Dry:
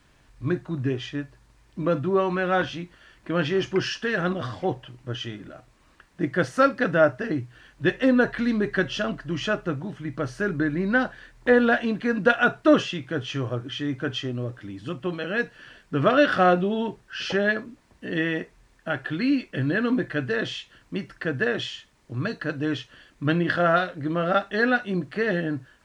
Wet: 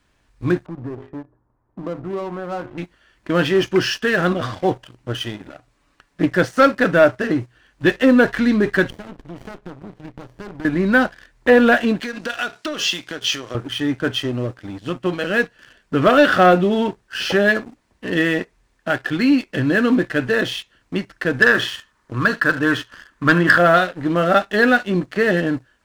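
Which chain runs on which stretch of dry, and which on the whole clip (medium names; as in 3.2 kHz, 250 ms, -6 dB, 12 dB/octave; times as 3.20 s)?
0.66–2.78 s: low-pass 1.2 kHz 24 dB/octave + de-hum 51.43 Hz, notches 9 + compression 2.5:1, threshold -35 dBFS
5.48–6.36 s: comb 7 ms, depth 47% + loudspeaker Doppler distortion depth 0.21 ms
8.90–10.65 s: treble shelf 4.4 kHz -6 dB + compression 3:1, threshold -37 dBFS + sliding maximum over 33 samples
12.02–13.55 s: compression, threshold -32 dBFS + high-pass 190 Hz + peaking EQ 5.5 kHz +14 dB 2.3 oct
21.42–23.58 s: high-order bell 1.3 kHz +9.5 dB 1.1 oct + delay 77 ms -17 dB
whole clip: peaking EQ 140 Hz -5.5 dB 0.36 oct; waveshaping leveller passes 2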